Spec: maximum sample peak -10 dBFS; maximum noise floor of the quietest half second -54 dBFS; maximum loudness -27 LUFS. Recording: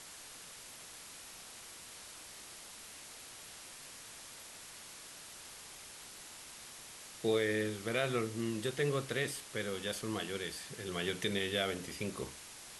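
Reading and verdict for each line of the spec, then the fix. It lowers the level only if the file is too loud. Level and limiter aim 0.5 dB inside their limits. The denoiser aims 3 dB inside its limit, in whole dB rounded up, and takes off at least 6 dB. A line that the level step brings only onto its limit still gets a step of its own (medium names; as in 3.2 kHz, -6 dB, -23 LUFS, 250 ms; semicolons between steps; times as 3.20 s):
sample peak -20.0 dBFS: pass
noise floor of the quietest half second -51 dBFS: fail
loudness -39.5 LUFS: pass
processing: noise reduction 6 dB, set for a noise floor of -51 dBFS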